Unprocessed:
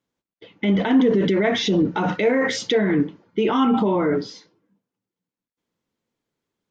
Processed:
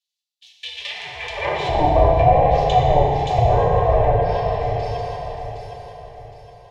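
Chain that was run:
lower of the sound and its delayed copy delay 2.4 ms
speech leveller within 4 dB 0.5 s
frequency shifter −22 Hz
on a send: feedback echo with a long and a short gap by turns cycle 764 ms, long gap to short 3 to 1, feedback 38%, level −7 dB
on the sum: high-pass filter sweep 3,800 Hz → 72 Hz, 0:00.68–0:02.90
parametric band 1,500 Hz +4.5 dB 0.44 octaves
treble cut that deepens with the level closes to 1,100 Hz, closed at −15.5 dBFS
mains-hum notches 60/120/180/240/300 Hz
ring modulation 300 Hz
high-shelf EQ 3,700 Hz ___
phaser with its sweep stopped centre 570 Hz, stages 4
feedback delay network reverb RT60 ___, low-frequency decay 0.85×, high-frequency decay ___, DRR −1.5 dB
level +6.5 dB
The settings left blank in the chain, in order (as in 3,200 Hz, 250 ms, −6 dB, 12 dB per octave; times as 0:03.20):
−5 dB, 2.4 s, 0.8×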